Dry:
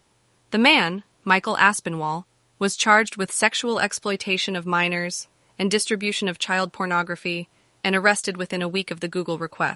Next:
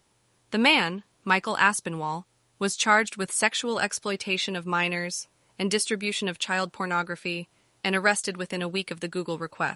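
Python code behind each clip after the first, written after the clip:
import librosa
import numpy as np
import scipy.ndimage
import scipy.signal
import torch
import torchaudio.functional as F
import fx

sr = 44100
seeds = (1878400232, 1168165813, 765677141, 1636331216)

y = fx.high_shelf(x, sr, hz=6700.0, db=4.0)
y = y * librosa.db_to_amplitude(-4.5)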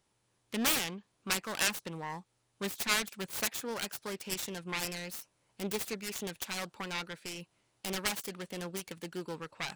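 y = fx.self_delay(x, sr, depth_ms=0.94)
y = y * librosa.db_to_amplitude(-9.0)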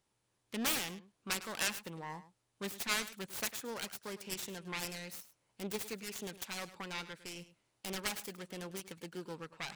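y = x + 10.0 ** (-15.0 / 20.0) * np.pad(x, (int(104 * sr / 1000.0), 0))[:len(x)]
y = y * librosa.db_to_amplitude(-4.5)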